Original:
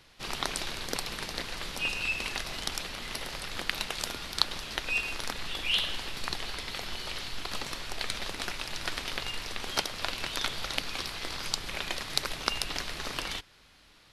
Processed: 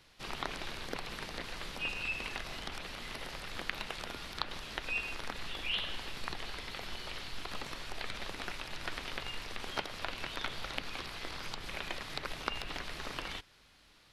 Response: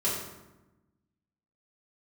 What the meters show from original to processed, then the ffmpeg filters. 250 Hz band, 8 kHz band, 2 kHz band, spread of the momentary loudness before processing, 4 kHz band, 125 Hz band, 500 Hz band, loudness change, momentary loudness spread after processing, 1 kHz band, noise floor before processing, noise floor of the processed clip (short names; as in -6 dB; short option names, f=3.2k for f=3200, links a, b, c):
-4.0 dB, -12.0 dB, -5.0 dB, 7 LU, -8.0 dB, -4.0 dB, -4.0 dB, -6.5 dB, 6 LU, -4.0 dB, -59 dBFS, -63 dBFS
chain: -filter_complex "[0:a]acrossover=split=3300[a][b];[b]acompressor=threshold=-44dB:ratio=4:attack=1:release=60[c];[a][c]amix=inputs=2:normalize=0,volume=-4dB"